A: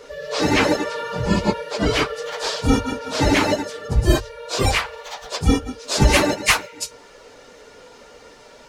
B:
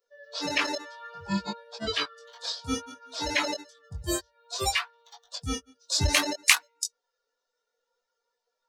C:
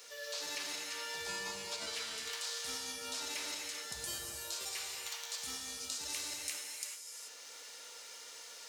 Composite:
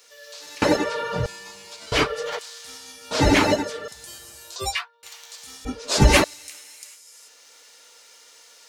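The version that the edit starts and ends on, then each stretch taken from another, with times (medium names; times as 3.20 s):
C
0.62–1.26 s: from A
1.92–2.39 s: from A
3.11–3.88 s: from A
4.56–5.03 s: from B
5.65–6.24 s: from A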